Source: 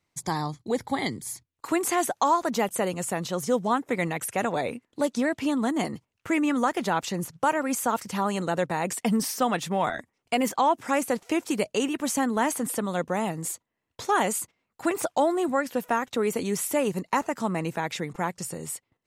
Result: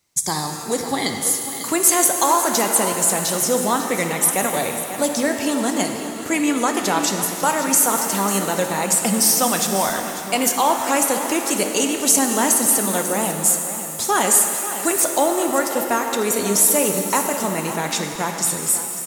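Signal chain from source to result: tone controls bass -2 dB, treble +13 dB; on a send: echo 0.546 s -12.5 dB; on the sum: shimmer reverb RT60 2.8 s, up +7 st, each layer -8 dB, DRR 4.5 dB; gain +3.5 dB

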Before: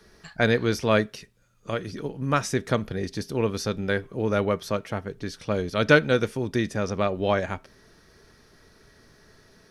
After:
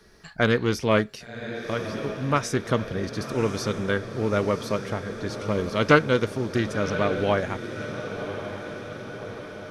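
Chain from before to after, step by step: diffused feedback echo 1.098 s, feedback 62%, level -10 dB; Doppler distortion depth 0.21 ms

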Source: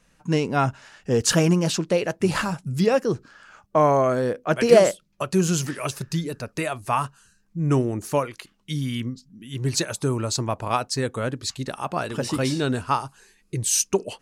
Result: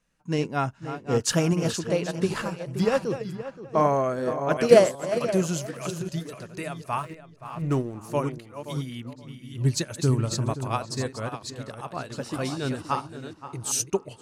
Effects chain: reverse delay 0.381 s, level -7.5 dB; 6.98–7.99 backlash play -34 dBFS; 9.58–10.52 tone controls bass +7 dB, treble +1 dB; on a send: darkening echo 0.524 s, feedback 29%, low-pass 2400 Hz, level -8.5 dB; on the sum: upward expander 1.5:1, over -34 dBFS

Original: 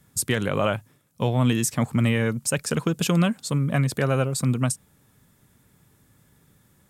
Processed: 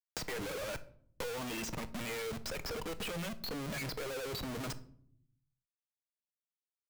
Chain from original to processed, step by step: per-bin expansion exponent 2; speaker cabinet 420–4600 Hz, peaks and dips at 490 Hz +9 dB, 700 Hz -7 dB, 1000 Hz -4 dB, 2200 Hz +8 dB, 3900 Hz +3 dB; notch 3600 Hz, Q 8.6; in parallel at +3 dB: negative-ratio compressor -32 dBFS, ratio -0.5; on the sum: limiter -21.5 dBFS, peak gain reduction 10 dB; Schmitt trigger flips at -42.5 dBFS; reverb RT60 0.50 s, pre-delay 6 ms, DRR 11.5 dB; three-band squash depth 70%; gain -6 dB

